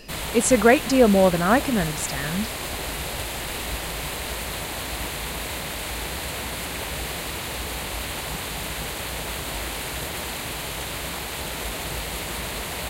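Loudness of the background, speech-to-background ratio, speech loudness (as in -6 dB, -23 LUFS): -29.0 LUFS, 9.0 dB, -20.0 LUFS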